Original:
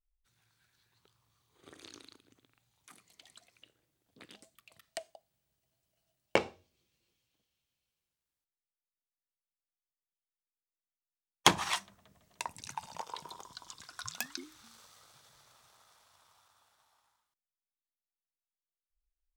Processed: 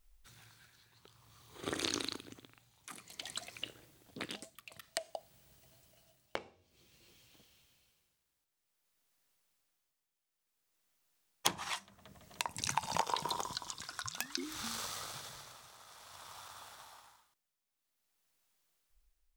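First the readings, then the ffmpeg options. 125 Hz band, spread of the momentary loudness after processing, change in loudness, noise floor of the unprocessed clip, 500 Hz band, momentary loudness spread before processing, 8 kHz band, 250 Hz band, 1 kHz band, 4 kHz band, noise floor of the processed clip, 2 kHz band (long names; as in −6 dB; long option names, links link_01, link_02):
−2.5 dB, 21 LU, −5.0 dB, below −85 dBFS, −5.0 dB, 25 LU, +0.5 dB, −2.0 dB, −1.5 dB, −2.0 dB, below −85 dBFS, −4.0 dB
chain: -af "acompressor=threshold=-46dB:ratio=10,tremolo=f=0.54:d=0.71,volume=17.5dB"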